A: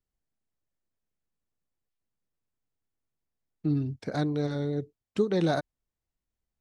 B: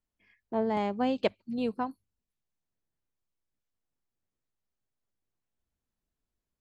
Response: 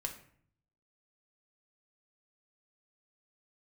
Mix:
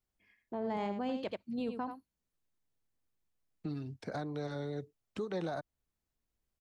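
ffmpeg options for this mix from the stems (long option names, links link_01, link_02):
-filter_complex "[0:a]acrossover=split=210|550|1400[link_01][link_02][link_03][link_04];[link_01]acompressor=threshold=-43dB:ratio=4[link_05];[link_02]acompressor=threshold=-44dB:ratio=4[link_06];[link_03]acompressor=threshold=-33dB:ratio=4[link_07];[link_04]acompressor=threshold=-51dB:ratio=4[link_08];[link_05][link_06][link_07][link_08]amix=inputs=4:normalize=0,volume=-1.5dB[link_09];[1:a]volume=-4dB,asplit=2[link_10][link_11];[link_11]volume=-10dB,aecho=0:1:84:1[link_12];[link_09][link_10][link_12]amix=inputs=3:normalize=0,alimiter=level_in=4.5dB:limit=-24dB:level=0:latency=1:release=20,volume=-4.5dB"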